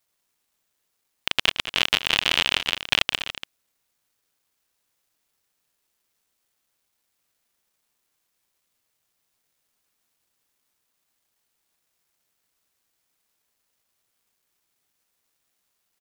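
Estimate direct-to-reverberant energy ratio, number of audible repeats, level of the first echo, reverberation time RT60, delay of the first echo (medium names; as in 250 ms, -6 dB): no reverb, 2, -15.0 dB, no reverb, 200 ms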